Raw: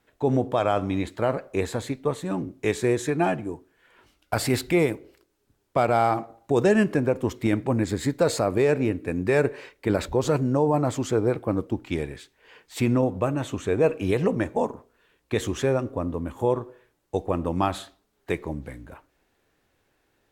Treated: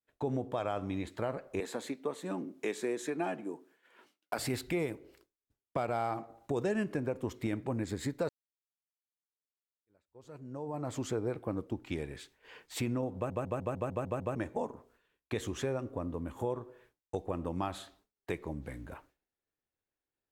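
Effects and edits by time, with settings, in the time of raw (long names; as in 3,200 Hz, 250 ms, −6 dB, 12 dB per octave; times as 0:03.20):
0:01.60–0:04.39: high-pass filter 200 Hz 24 dB per octave
0:08.29–0:11.01: fade in exponential
0:13.15: stutter in place 0.15 s, 8 plays
whole clip: downward expander −54 dBFS; downward compressor 2 to 1, threshold −36 dBFS; level −2 dB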